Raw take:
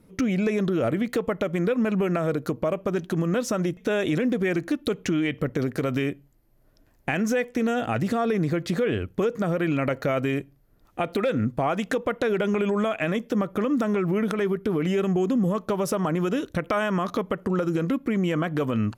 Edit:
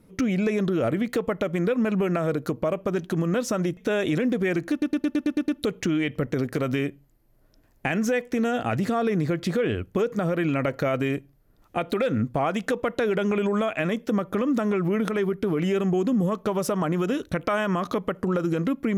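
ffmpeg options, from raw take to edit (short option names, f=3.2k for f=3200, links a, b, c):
-filter_complex "[0:a]asplit=8[a][b][c][d][e][f][g][h];[a]atrim=end=4.822[i];[b]atrim=start=4.708:end=4.822[j];[c]atrim=start=4.708:end=4.822[k];[d]atrim=start=4.708:end=4.822[l];[e]atrim=start=4.708:end=4.822[m];[f]atrim=start=4.708:end=4.822[n];[g]atrim=start=4.708:end=4.822[o];[h]atrim=start=4.708[p];[i][j]acrossfade=d=0.004:c1=hsin:c2=hsin[q];[q][k]acrossfade=d=0.004:c1=hsin:c2=hsin[r];[r][l]acrossfade=d=0.004:c1=hsin:c2=hsin[s];[s][m]acrossfade=d=0.004:c1=hsin:c2=hsin[t];[t][n]acrossfade=d=0.004:c1=hsin:c2=hsin[u];[u][o]acrossfade=d=0.004:c1=hsin:c2=hsin[v];[v][p]acrossfade=d=0.004:c1=hsin:c2=hsin"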